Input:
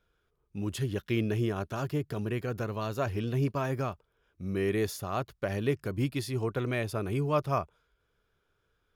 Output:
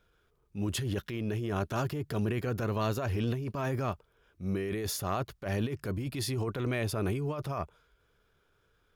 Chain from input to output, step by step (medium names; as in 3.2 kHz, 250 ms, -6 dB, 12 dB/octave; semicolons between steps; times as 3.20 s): compressor with a negative ratio -33 dBFS, ratio -1; transient shaper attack -7 dB, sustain 0 dB; trim +2.5 dB